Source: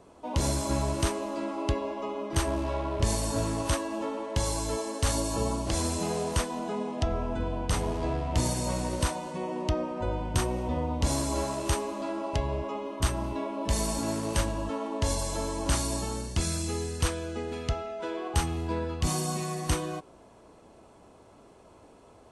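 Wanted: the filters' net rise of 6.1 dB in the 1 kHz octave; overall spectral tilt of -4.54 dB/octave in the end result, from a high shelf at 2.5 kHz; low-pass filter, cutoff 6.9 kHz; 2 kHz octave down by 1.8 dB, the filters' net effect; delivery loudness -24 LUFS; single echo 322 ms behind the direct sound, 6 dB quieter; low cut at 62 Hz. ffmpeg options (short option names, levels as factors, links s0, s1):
-af "highpass=62,lowpass=6900,equalizer=f=1000:t=o:g=8,equalizer=f=2000:t=o:g=-8,highshelf=f=2500:g=5.5,aecho=1:1:322:0.501,volume=1.58"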